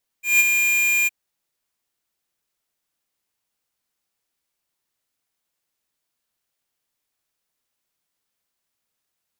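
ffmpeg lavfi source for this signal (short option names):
-f lavfi -i "aevalsrc='0.211*(2*lt(mod(2410*t,1),0.5)-1)':d=0.863:s=44100,afade=t=in:d=0.168,afade=t=out:st=0.168:d=0.027:silence=0.531,afade=t=out:st=0.84:d=0.023"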